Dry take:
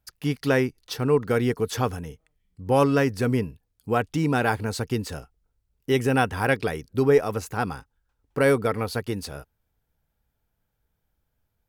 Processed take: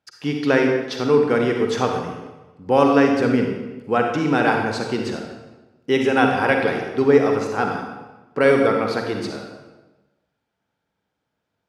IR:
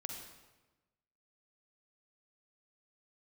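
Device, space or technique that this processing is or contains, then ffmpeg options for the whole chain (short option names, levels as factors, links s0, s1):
supermarket ceiling speaker: -filter_complex "[0:a]highpass=210,lowpass=5000[s0];[1:a]atrim=start_sample=2205[s1];[s0][s1]afir=irnorm=-1:irlink=0,volume=2.37"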